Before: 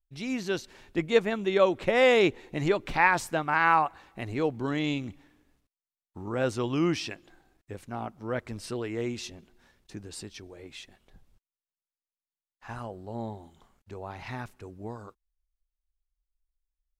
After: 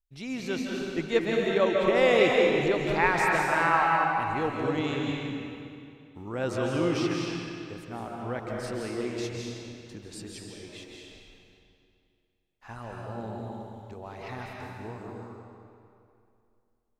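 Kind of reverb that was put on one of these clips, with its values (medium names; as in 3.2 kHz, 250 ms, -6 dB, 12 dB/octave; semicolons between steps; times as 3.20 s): algorithmic reverb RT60 2.5 s, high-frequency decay 0.85×, pre-delay 115 ms, DRR -2 dB; trim -3 dB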